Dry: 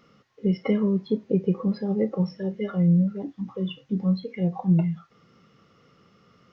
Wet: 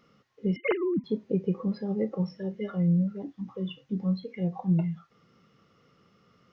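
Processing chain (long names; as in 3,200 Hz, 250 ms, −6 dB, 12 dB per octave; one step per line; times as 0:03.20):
0:00.56–0:01.04: three sine waves on the formant tracks
level −4.5 dB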